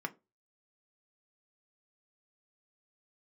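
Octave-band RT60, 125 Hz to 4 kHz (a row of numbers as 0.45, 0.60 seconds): 0.25, 0.25, 0.30, 0.20, 0.20, 0.15 seconds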